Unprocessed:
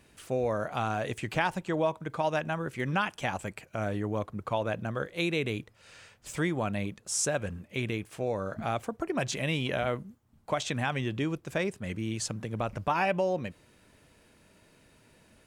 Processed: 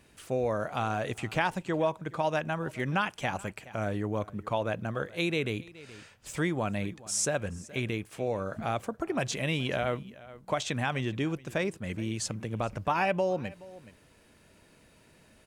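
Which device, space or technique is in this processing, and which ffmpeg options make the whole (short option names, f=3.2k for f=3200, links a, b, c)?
ducked delay: -filter_complex "[0:a]asplit=3[a][b][c];[b]adelay=423,volume=-6dB[d];[c]apad=whole_len=700837[e];[d][e]sidechaincompress=threshold=-47dB:ratio=5:attack=47:release=781[f];[a][f]amix=inputs=2:normalize=0"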